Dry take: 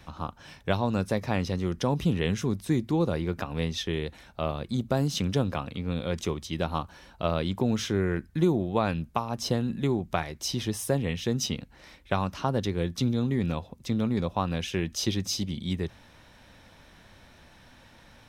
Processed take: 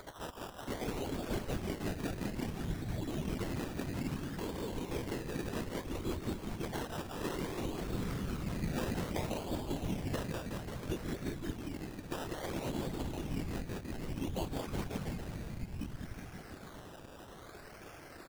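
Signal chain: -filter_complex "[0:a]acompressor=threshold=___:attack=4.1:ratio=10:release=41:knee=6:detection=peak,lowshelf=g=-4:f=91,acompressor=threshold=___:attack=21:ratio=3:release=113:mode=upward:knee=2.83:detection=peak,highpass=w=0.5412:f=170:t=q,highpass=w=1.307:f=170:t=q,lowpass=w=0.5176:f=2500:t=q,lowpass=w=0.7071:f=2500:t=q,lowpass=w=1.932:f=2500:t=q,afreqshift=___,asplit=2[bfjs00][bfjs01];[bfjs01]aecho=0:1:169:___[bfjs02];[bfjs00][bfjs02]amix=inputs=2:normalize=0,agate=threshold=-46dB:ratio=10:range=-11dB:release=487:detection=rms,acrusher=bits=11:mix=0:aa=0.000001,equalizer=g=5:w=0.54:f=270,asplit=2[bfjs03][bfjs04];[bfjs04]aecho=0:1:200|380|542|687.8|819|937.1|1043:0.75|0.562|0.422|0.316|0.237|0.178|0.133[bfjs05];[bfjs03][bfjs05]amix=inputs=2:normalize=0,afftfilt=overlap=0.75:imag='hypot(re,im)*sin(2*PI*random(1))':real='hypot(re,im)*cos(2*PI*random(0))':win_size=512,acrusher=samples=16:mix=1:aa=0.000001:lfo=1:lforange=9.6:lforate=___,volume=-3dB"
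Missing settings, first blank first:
-27dB, -39dB, -210, 0.422, 0.6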